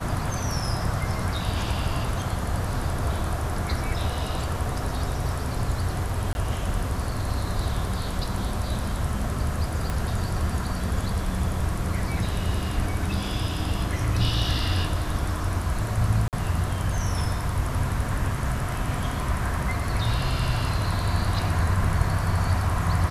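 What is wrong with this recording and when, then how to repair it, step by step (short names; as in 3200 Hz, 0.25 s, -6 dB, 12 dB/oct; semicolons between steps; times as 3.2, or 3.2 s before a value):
6.33–6.35 gap 21 ms
9.9 pop
16.28–16.33 gap 48 ms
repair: de-click; interpolate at 6.33, 21 ms; interpolate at 16.28, 48 ms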